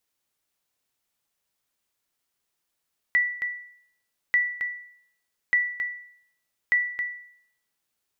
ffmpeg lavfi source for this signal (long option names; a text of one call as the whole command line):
ffmpeg -f lavfi -i "aevalsrc='0.188*(sin(2*PI*1960*mod(t,1.19))*exp(-6.91*mod(t,1.19)/0.64)+0.398*sin(2*PI*1960*max(mod(t,1.19)-0.27,0))*exp(-6.91*max(mod(t,1.19)-0.27,0)/0.64))':duration=4.76:sample_rate=44100" out.wav